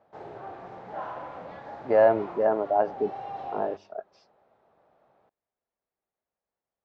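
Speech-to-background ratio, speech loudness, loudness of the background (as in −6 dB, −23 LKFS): 15.0 dB, −25.0 LKFS, −40.0 LKFS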